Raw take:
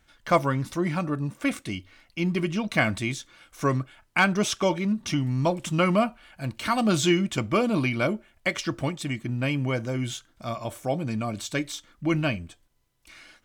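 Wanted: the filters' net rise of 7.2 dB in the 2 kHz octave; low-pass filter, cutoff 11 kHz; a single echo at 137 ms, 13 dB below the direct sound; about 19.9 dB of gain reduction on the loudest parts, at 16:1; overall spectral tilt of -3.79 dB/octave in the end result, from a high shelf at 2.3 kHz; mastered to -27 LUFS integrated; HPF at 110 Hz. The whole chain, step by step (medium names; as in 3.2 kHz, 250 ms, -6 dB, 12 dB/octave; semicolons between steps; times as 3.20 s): high-pass 110 Hz; low-pass 11 kHz; peaking EQ 2 kHz +5.5 dB; treble shelf 2.3 kHz +6.5 dB; compression 16:1, threshold -31 dBFS; delay 137 ms -13 dB; trim +8.5 dB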